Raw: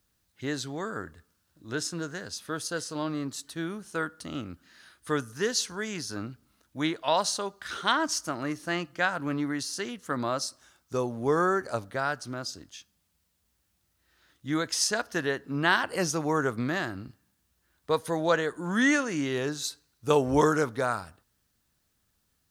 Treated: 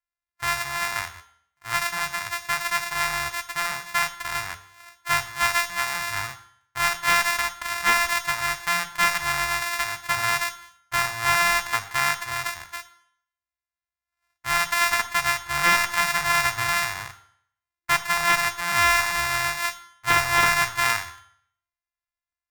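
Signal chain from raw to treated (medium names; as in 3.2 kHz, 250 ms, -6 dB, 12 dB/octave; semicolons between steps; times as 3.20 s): sorted samples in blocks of 128 samples; high-order bell 1.3 kHz +11 dB; expander -43 dBFS; in parallel at 0 dB: compression, threshold -35 dBFS, peak gain reduction 22 dB; on the sum: amplifier tone stack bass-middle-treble 10-0-10; sine folder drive 7 dB, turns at -5 dBFS; on a send at -9 dB: reverberation RT60 0.65 s, pre-delay 11 ms; on the sum: trim -2.5 dB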